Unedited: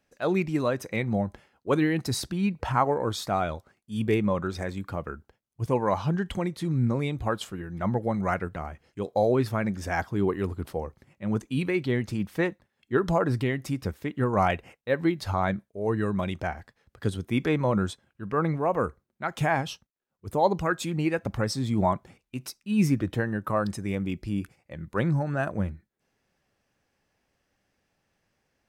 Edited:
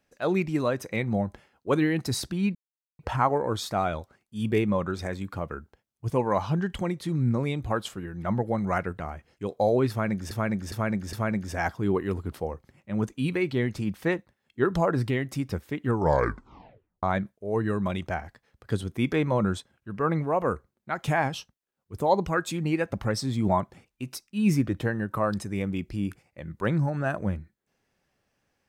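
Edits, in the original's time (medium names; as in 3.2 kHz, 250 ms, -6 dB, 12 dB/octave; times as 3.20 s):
2.55 s: insert silence 0.44 s
9.46–9.87 s: loop, 4 plays
14.18 s: tape stop 1.18 s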